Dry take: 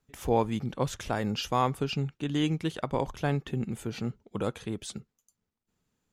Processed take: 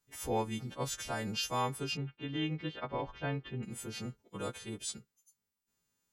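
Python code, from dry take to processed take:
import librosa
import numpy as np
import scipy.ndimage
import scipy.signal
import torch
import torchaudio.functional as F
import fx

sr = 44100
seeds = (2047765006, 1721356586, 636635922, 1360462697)

y = fx.freq_snap(x, sr, grid_st=2)
y = fx.lowpass(y, sr, hz=3400.0, slope=24, at=(1.97, 3.63))
y = F.gain(torch.from_numpy(y), -7.0).numpy()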